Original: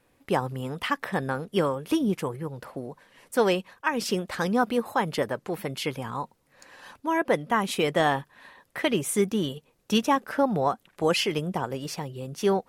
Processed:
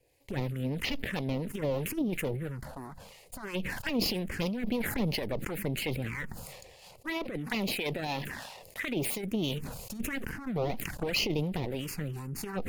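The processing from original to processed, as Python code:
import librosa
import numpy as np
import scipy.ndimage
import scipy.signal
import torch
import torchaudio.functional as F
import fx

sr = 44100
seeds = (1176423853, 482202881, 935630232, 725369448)

y = fx.lower_of_two(x, sr, delay_ms=0.42)
y = fx.low_shelf(y, sr, hz=140.0, db=-11.5, at=(6.92, 9.35), fade=0.02)
y = fx.over_compress(y, sr, threshold_db=-27.0, ratio=-0.5)
y = fx.harmonic_tremolo(y, sr, hz=3.0, depth_pct=50, crossover_hz=720.0)
y = fx.env_phaser(y, sr, low_hz=220.0, high_hz=1600.0, full_db=-27.5)
y = fx.sustainer(y, sr, db_per_s=37.0)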